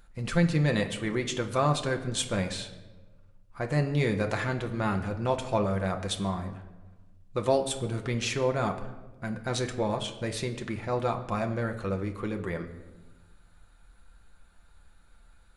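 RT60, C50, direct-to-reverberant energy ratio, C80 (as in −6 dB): 1.2 s, 11.0 dB, 4.0 dB, 13.0 dB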